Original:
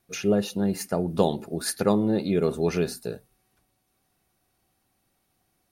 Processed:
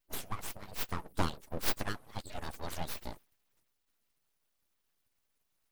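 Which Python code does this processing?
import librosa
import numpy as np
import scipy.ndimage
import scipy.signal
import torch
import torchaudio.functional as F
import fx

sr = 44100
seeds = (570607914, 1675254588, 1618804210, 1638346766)

y = fx.hpss_only(x, sr, part='percussive')
y = fx.bass_treble(y, sr, bass_db=4, treble_db=10)
y = np.abs(y)
y = F.gain(torch.from_numpy(y), -7.5).numpy()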